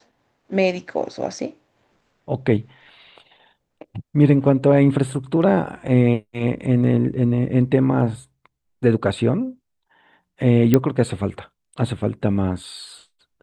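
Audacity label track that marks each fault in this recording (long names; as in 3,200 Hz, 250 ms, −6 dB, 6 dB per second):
10.740000	10.740000	click −3 dBFS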